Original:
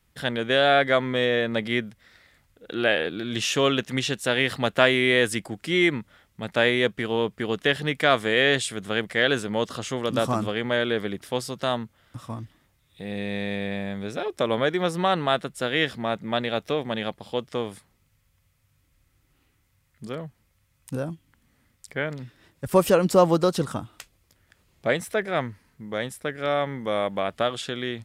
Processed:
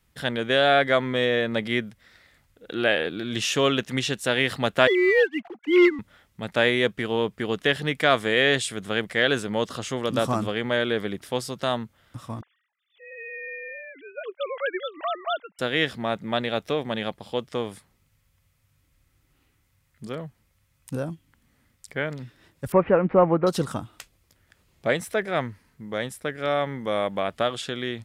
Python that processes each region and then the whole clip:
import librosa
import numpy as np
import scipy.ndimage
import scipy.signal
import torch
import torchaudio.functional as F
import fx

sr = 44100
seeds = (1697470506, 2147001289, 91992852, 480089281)

y = fx.chain(x, sr, fx.sine_speech(),
    fx.leveller(passes=1), at=(4.87, 5.99))
y = fx.chain(y, sr, fx.sine_speech(),
    fx.highpass(hz=1200.0, slope=6), at=(12.41, 15.59))
y = fx.chain(y, sr, fx.cvsd(bps=64000),
    fx.ellip_lowpass(hz=2300.0, order=4, stop_db=80), at=(22.72, 23.47))